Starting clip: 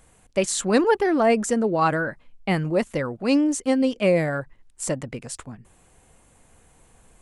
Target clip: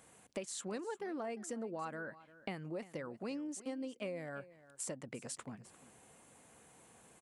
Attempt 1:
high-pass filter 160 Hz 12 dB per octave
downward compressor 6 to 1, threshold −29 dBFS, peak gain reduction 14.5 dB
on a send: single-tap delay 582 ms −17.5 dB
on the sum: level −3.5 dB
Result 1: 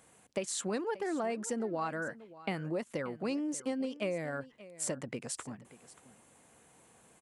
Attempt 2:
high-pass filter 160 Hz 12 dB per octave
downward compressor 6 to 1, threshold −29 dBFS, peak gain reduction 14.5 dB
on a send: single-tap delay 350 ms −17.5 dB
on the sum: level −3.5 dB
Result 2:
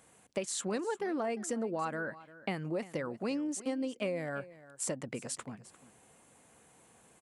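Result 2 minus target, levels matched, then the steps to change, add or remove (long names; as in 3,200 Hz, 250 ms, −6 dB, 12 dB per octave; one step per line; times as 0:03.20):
downward compressor: peak gain reduction −7 dB
change: downward compressor 6 to 1, threshold −37.5 dBFS, peak gain reduction 22 dB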